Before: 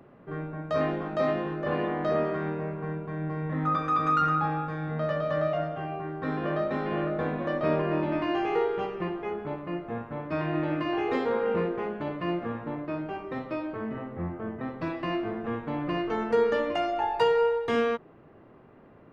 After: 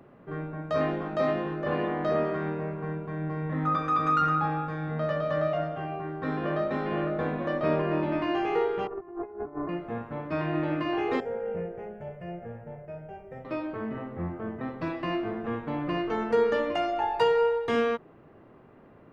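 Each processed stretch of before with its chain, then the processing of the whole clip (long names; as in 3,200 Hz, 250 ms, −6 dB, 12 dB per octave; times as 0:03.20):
0:08.87–0:09.69: low-pass filter 1,400 Hz 24 dB per octave + compressor whose output falls as the input rises −39 dBFS, ratio −0.5 + comb filter 2.8 ms, depth 90%
0:11.20–0:13.45: parametric band 2,100 Hz −11 dB 2.7 octaves + phaser with its sweep stopped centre 1,100 Hz, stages 6
whole clip: no processing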